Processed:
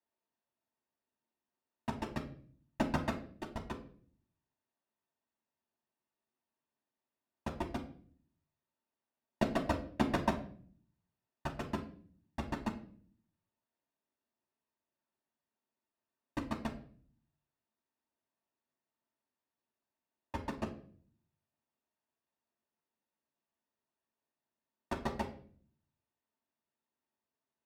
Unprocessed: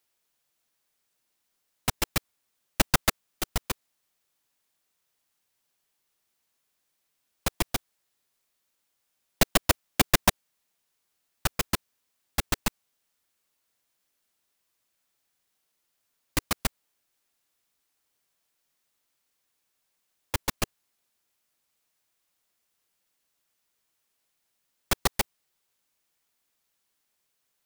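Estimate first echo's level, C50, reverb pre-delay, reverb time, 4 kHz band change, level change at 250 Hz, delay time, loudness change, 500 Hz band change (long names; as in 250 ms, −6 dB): no echo audible, 11.5 dB, 3 ms, 0.50 s, −19.5 dB, −2.5 dB, no echo audible, −11.0 dB, −5.5 dB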